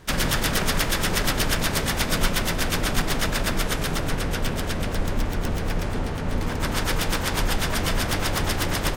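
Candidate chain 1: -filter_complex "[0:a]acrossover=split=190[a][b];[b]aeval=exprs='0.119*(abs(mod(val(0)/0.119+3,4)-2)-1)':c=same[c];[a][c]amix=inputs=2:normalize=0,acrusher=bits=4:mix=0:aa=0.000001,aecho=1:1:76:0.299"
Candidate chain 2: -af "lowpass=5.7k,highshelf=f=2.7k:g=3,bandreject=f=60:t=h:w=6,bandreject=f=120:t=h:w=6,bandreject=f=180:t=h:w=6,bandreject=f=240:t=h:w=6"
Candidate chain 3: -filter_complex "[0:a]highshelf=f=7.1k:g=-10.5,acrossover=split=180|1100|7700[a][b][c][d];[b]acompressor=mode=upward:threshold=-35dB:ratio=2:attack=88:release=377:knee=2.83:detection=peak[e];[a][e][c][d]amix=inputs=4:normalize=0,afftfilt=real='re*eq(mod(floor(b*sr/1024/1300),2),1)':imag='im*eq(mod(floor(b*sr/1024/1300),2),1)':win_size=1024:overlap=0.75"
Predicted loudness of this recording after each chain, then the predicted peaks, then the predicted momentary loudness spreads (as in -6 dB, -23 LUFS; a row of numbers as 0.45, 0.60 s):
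-24.0, -25.0, -32.0 LUFS; -9.0, -6.5, -14.0 dBFS; 3, 5, 10 LU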